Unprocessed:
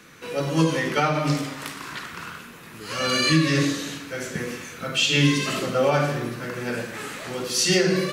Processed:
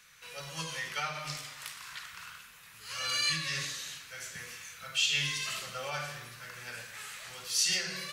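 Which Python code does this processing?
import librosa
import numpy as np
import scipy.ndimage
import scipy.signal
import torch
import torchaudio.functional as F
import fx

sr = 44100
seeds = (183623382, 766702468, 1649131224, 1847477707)

y = fx.tone_stack(x, sr, knobs='10-0-10')
y = y * 10.0 ** (-4.5 / 20.0)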